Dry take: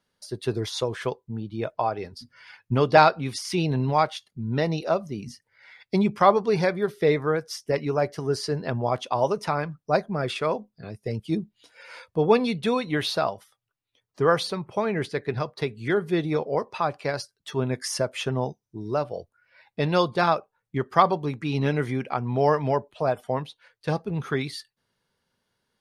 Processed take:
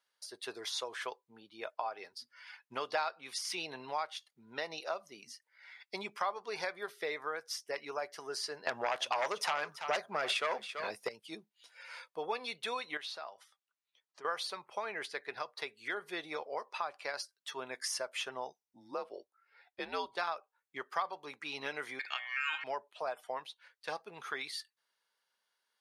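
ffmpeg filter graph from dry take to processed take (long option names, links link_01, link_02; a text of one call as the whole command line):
ffmpeg -i in.wav -filter_complex "[0:a]asettb=1/sr,asplit=3[link_01][link_02][link_03];[link_01]atrim=end=8.674[link_04];[link_02]atrim=start=8.67:end=11.09,asetpts=PTS-STARTPTS,afade=type=in:duration=0.004:curve=qsin,afade=type=out:start_time=2.416:duration=0.004:curve=qsin,aeval=exprs='0.422*sin(PI/2*3.16*val(0)/0.422)':channel_layout=same,aecho=1:1:334:0.15,atrim=end_sample=106722[link_05];[link_03]atrim=start=11.086[link_06];[link_04][link_05]acrossfade=duration=0.004:curve1=hsin:curve2=qsin[link_07];[link_07][link_06]acrossfade=duration=0.004:curve1=qsin:curve2=hsin,asettb=1/sr,asplit=3[link_08][link_09][link_10];[link_08]atrim=end=12.974[link_11];[link_09]atrim=start=12.97:end=14.25,asetpts=PTS-STARTPTS,afade=type=in:duration=0.004:curve=qsin,afade=type=out:start_time=1.276:duration=0.004:curve=qsin,lowpass=8500,acompressor=threshold=-42dB:ratio=2:attack=3.2:release=140:knee=1:detection=peak[link_12];[link_10]atrim=start=14.246[link_13];[link_11][link_12]acrossfade=duration=0.004:curve1=hsin:curve2=qsin[link_14];[link_14][link_13]acrossfade=duration=0.004:curve1=qsin:curve2=hsin,asettb=1/sr,asplit=3[link_15][link_16][link_17];[link_15]atrim=end=18.634[link_18];[link_16]atrim=start=18.63:end=20.17,asetpts=PTS-STARTPTS,afade=type=in:duration=0.004:curve=qsin,afade=type=out:start_time=1.536:duration=0.004:curve=qsin,tiltshelf=frequency=830:gain=5,afreqshift=-95[link_19];[link_17]atrim=start=20.166[link_20];[link_18][link_19]acrossfade=duration=0.004:curve1=hsin:curve2=qsin[link_21];[link_21][link_20]acrossfade=duration=0.004:curve1=qsin:curve2=hsin,asettb=1/sr,asplit=3[link_22][link_23][link_24];[link_22]atrim=end=21.994[link_25];[link_23]atrim=start=21.99:end=22.64,asetpts=PTS-STARTPTS,afade=type=in:duration=0.004:curve=qsin,afade=type=out:start_time=0.646:duration=0.004:curve=qsin,bandreject=frequency=60.26:width_type=h:width=4,bandreject=frequency=120.52:width_type=h:width=4,bandreject=frequency=180.78:width_type=h:width=4,bandreject=frequency=241.04:width_type=h:width=4,bandreject=frequency=301.3:width_type=h:width=4,bandreject=frequency=361.56:width_type=h:width=4,bandreject=frequency=421.82:width_type=h:width=4,bandreject=frequency=482.08:width_type=h:width=4,bandreject=frequency=542.34:width_type=h:width=4,bandreject=frequency=602.6:width_type=h:width=4,bandreject=frequency=662.86:width_type=h:width=4,bandreject=frequency=723.12:width_type=h:width=4,bandreject=frequency=783.38:width_type=h:width=4,bandreject=frequency=843.64:width_type=h:width=4,bandreject=frequency=903.9:width_type=h:width=4,bandreject=frequency=964.16:width_type=h:width=4,bandreject=frequency=1024.42:width_type=h:width=4,bandreject=frequency=1084.68:width_type=h:width=4,bandreject=frequency=1144.94:width_type=h:width=4,bandreject=frequency=1205.2:width_type=h:width=4,bandreject=frequency=1265.46:width_type=h:width=4,bandreject=frequency=1325.72:width_type=h:width=4,bandreject=frequency=1385.98:width_type=h:width=4,bandreject=frequency=1446.24:width_type=h:width=4,bandreject=frequency=1506.5:width_type=h:width=4,bandreject=frequency=1566.76:width_type=h:width=4,bandreject=frequency=1627.02:width_type=h:width=4,aeval=exprs='val(0)*sin(2*PI*2000*n/s)':channel_layout=same[link_26];[link_24]atrim=start=22.636[link_27];[link_25][link_26]acrossfade=duration=0.004:curve1=hsin:curve2=qsin[link_28];[link_28][link_27]acrossfade=duration=0.004:curve1=qsin:curve2=hsin,highpass=840,acompressor=threshold=-30dB:ratio=3,volume=-4dB" out.wav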